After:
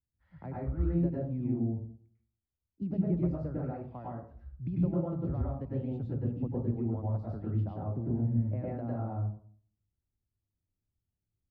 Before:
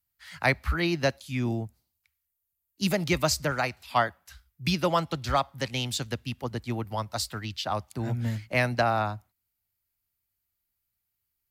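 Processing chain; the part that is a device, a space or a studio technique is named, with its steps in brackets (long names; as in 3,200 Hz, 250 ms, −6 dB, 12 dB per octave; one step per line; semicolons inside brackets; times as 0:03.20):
television next door (downward compressor 4 to 1, threshold −32 dBFS, peak gain reduction 12.5 dB; low-pass filter 360 Hz 12 dB per octave; convolution reverb RT60 0.50 s, pre-delay 94 ms, DRR −5 dB)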